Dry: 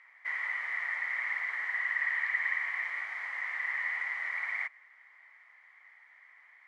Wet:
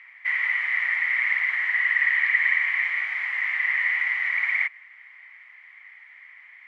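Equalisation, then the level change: bell 2600 Hz +15 dB 1.2 oct; 0.0 dB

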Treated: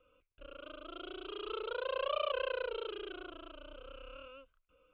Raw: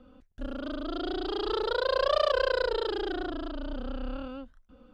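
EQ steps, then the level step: ladder low-pass 2800 Hz, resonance 65%; low shelf 130 Hz -10 dB; fixed phaser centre 1200 Hz, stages 8; +2.0 dB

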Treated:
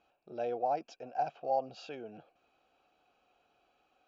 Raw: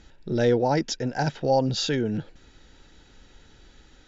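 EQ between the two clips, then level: vowel filter a; notch 3600 Hz, Q 8.9; 0.0 dB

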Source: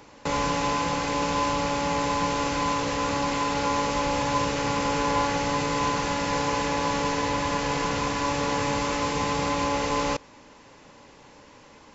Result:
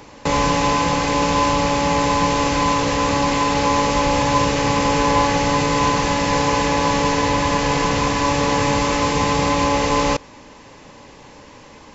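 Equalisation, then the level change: low shelf 140 Hz +3.5 dB; notch 1400 Hz, Q 15; +7.5 dB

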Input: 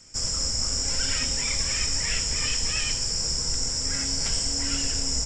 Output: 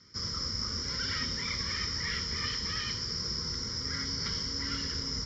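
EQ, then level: air absorption 86 m; speaker cabinet 120–4800 Hz, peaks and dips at 140 Hz -8 dB, 280 Hz -9 dB, 520 Hz -4 dB, 820 Hz -7 dB, 1600 Hz -8 dB, 3500 Hz -5 dB; fixed phaser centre 2600 Hz, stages 6; +5.0 dB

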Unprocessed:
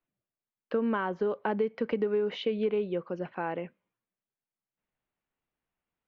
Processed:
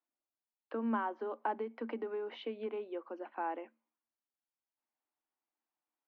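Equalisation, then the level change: rippled Chebyshev high-pass 220 Hz, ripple 9 dB; air absorption 130 m; low shelf 400 Hz -3.5 dB; 0.0 dB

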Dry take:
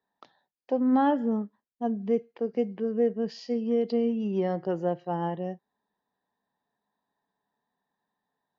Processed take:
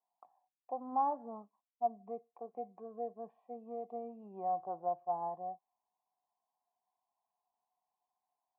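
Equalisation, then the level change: vocal tract filter a; +3.5 dB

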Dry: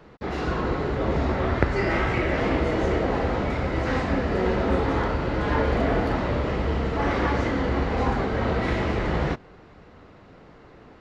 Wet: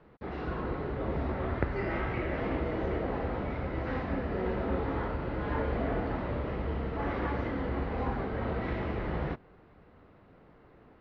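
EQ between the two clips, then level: air absorption 260 m; -8.0 dB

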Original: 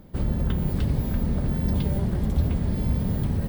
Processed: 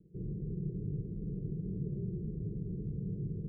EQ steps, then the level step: HPF 48 Hz; steep low-pass 540 Hz 72 dB/oct; fixed phaser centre 370 Hz, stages 8; -8.5 dB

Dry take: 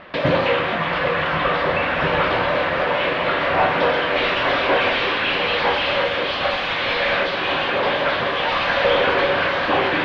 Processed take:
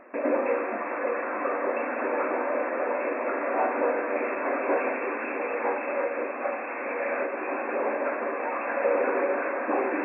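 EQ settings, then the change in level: brick-wall FIR band-pass 220–2700 Hz; tilt shelf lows +6 dB, about 900 Hz; -8.5 dB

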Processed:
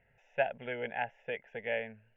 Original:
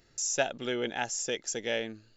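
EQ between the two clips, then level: steep low-pass 2700 Hz 36 dB/oct; low shelf 78 Hz -8 dB; fixed phaser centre 1200 Hz, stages 6; 0.0 dB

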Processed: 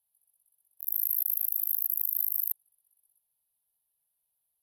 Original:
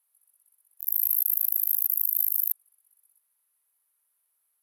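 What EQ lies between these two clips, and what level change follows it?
tone controls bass +10 dB, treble -4 dB; fixed phaser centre 860 Hz, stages 4; fixed phaser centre 3000 Hz, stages 4; +2.0 dB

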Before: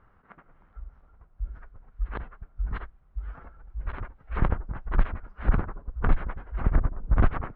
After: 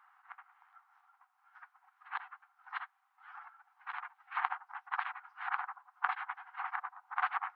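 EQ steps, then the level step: brick-wall FIR high-pass 720 Hz; +1.5 dB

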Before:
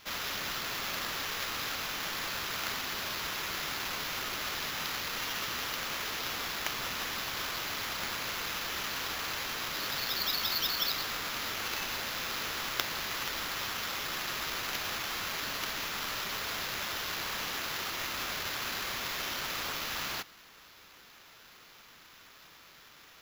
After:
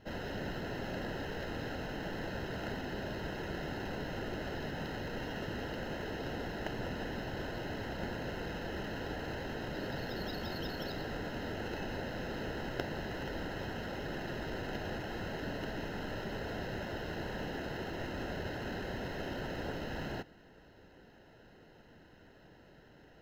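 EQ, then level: running mean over 38 samples; +8.5 dB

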